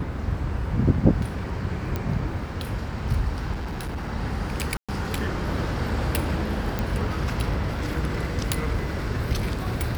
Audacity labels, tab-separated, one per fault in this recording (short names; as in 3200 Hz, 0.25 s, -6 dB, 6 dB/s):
1.960000	1.960000	pop -14 dBFS
3.530000	4.080000	clipped -27 dBFS
4.770000	4.890000	gap 0.116 s
6.790000	6.790000	pop -12 dBFS